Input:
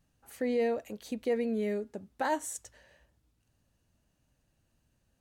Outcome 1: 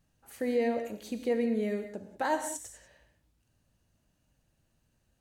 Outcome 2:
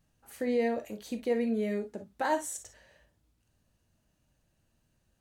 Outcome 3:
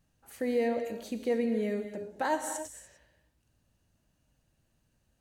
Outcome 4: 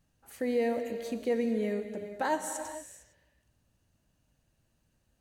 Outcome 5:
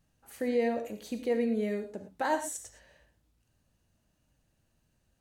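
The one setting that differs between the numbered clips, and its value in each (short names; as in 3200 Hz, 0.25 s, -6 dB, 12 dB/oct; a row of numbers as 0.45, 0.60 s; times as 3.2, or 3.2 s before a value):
non-linear reverb, gate: 220, 80, 320, 480, 140 ms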